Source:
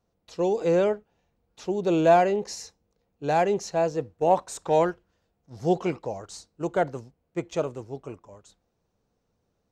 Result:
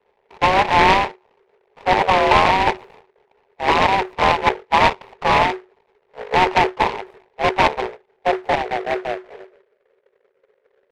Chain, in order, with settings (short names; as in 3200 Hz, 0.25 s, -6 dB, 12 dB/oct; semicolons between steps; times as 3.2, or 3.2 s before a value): cycle switcher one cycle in 2, muted; low shelf 100 Hz +11.5 dB; harmonic-percussive split harmonic -7 dB; high shelf 6300 Hz -7 dB; in parallel at -1 dB: negative-ratio compressor -28 dBFS, ratio -0.5; on the sum: low-pass sweep 560 Hz -> 180 Hz, 7.02–8.97; tempo 0.89×; frequency shift +370 Hz; noise-modulated delay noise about 1200 Hz, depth 0.11 ms; gain +5 dB